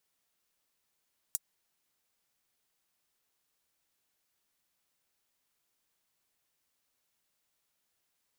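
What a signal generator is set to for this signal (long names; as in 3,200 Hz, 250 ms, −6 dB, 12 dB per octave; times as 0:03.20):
closed synth hi-hat, high-pass 7,500 Hz, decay 0.04 s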